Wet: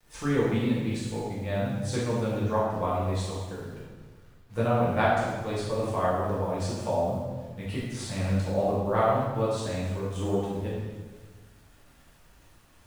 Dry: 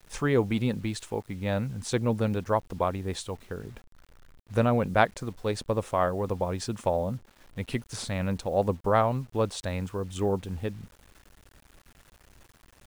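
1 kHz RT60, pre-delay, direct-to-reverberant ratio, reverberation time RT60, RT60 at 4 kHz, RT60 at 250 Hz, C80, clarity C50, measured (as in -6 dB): 1.3 s, 4 ms, -8.5 dB, 1.4 s, 1.2 s, 1.6 s, 1.5 dB, -1.0 dB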